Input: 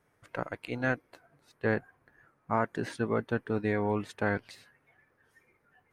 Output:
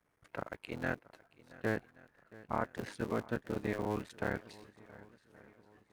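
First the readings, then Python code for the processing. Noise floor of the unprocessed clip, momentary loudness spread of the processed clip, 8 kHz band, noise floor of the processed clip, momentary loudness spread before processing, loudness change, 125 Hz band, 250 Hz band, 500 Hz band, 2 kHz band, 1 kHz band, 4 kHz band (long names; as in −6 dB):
−72 dBFS, 19 LU, −3.0 dB, −76 dBFS, 8 LU, −6.5 dB, −6.5 dB, −6.0 dB, −6.5 dB, −6.5 dB, −6.5 dB, −4.5 dB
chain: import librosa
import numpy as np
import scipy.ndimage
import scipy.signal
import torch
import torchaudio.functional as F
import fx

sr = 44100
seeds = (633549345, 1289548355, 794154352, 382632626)

y = fx.cycle_switch(x, sr, every=3, mode='muted')
y = fx.echo_swing(y, sr, ms=1126, ratio=1.5, feedback_pct=39, wet_db=-20.5)
y = F.gain(torch.from_numpy(y), -5.0).numpy()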